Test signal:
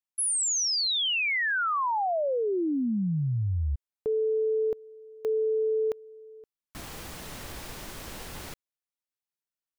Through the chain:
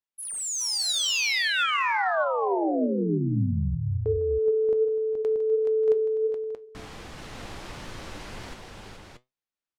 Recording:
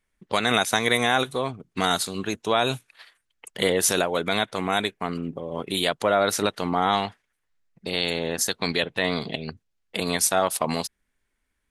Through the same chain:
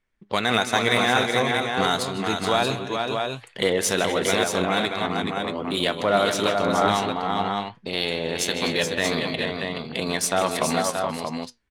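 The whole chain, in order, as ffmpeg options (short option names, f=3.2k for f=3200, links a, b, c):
-af "aecho=1:1:155|251|404|424|586|630:0.211|0.15|0.15|0.562|0.133|0.531,flanger=delay=7.8:depth=2.4:regen=75:speed=1.4:shape=sinusoidal,adynamicsmooth=sensitivity=4:basefreq=6k,volume=4.5dB"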